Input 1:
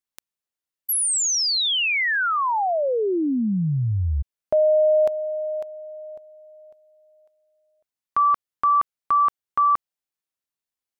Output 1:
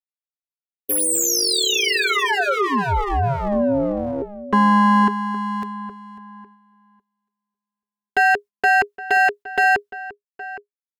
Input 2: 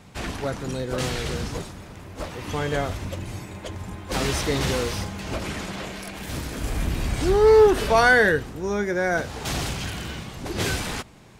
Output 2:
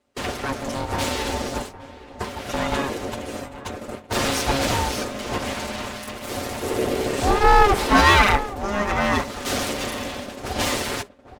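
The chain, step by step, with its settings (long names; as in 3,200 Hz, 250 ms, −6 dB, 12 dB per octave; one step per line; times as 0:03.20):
lower of the sound and its delayed copy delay 6.2 ms
noise gate −37 dBFS, range −24 dB
slap from a distant wall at 140 metres, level −15 dB
ring modulation 410 Hz
level +7 dB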